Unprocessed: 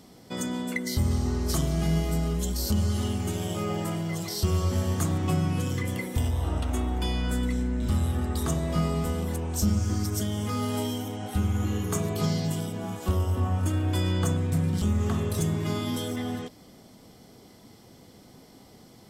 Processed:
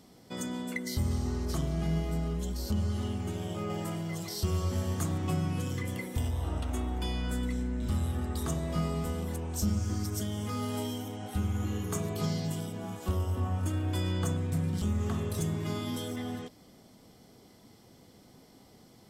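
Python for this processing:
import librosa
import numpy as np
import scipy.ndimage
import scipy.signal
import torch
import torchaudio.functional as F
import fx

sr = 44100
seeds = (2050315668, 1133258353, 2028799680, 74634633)

y = fx.high_shelf(x, sr, hz=4500.0, db=-8.5, at=(1.45, 3.7))
y = y * 10.0 ** (-5.0 / 20.0)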